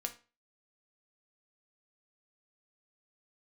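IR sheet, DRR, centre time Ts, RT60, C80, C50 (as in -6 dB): 4.5 dB, 8 ms, 0.35 s, 19.5 dB, 13.5 dB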